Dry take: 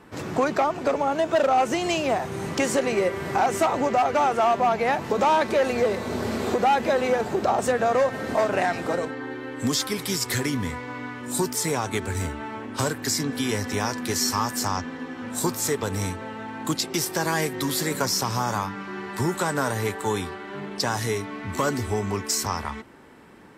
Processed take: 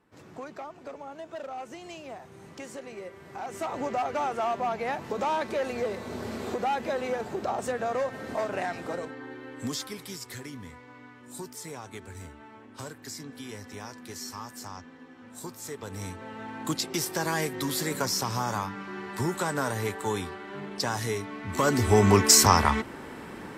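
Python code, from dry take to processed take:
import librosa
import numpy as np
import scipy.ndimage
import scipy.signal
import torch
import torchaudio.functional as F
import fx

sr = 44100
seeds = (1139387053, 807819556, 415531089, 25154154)

y = fx.gain(x, sr, db=fx.line((3.3, -18.0), (3.81, -8.0), (9.64, -8.0), (10.31, -15.0), (15.59, -15.0), (16.45, -4.0), (21.45, -4.0), (22.06, 8.5)))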